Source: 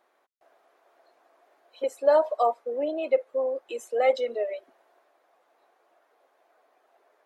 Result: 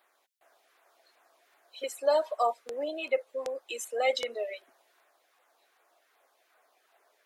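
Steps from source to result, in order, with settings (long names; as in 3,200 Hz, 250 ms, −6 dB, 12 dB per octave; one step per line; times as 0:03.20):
auto-filter notch saw down 2.6 Hz 480–6,900 Hz
tilt shelving filter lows −8.5 dB, about 1,200 Hz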